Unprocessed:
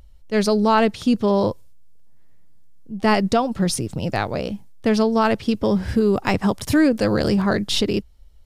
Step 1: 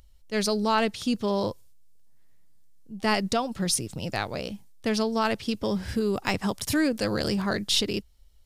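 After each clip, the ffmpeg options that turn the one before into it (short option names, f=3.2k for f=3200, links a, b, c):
-af "highshelf=f=2.1k:g=9.5,volume=-8.5dB"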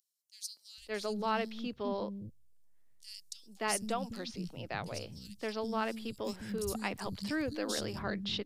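-filter_complex "[0:a]acrossover=split=240|4400[a][b][c];[b]adelay=570[d];[a]adelay=780[e];[e][d][c]amix=inputs=3:normalize=0,volume=-8.5dB"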